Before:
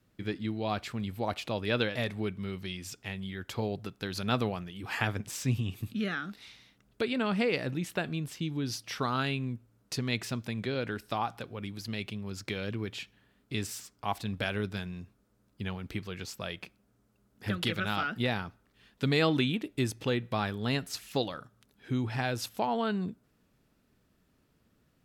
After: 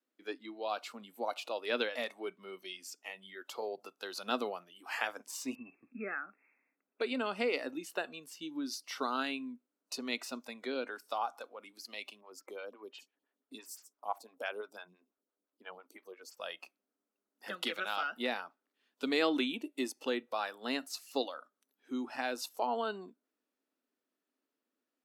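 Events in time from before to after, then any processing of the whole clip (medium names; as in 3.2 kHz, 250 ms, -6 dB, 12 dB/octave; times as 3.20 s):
5.55–7.01 s: brick-wall FIR low-pass 2.7 kHz
12.21–16.37 s: lamp-driven phase shifter 5.9 Hz
whole clip: elliptic high-pass 260 Hz, stop band 80 dB; spectral noise reduction 12 dB; trim -2.5 dB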